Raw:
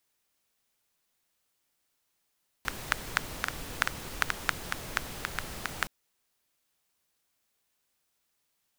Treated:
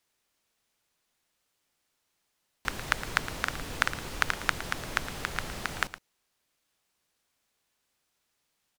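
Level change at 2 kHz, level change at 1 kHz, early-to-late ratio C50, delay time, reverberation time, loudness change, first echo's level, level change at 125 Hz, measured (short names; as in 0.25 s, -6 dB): +2.5 dB, +2.5 dB, none, 0.113 s, none, +2.0 dB, -14.0 dB, +2.5 dB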